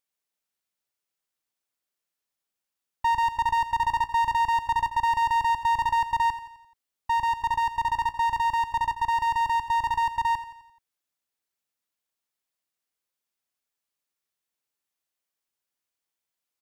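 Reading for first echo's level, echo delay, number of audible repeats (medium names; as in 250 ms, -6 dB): -13.0 dB, 86 ms, 4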